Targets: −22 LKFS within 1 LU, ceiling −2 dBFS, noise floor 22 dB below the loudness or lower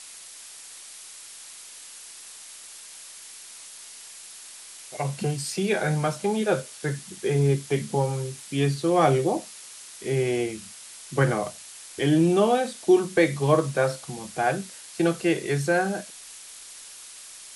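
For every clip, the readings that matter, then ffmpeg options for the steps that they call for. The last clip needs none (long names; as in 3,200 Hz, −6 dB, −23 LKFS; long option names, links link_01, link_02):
background noise floor −44 dBFS; target noise floor −47 dBFS; integrated loudness −25.0 LKFS; sample peak −6.5 dBFS; target loudness −22.0 LKFS
→ -af "afftdn=noise_reduction=6:noise_floor=-44"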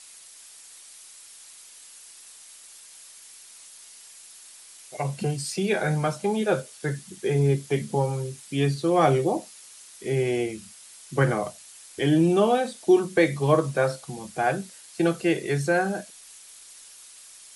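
background noise floor −48 dBFS; integrated loudness −25.0 LKFS; sample peak −6.5 dBFS; target loudness −22.0 LKFS
→ -af "volume=3dB"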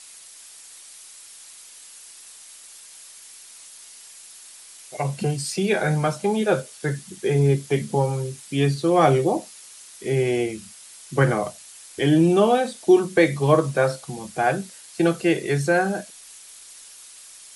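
integrated loudness −22.0 LKFS; sample peak −3.5 dBFS; background noise floor −45 dBFS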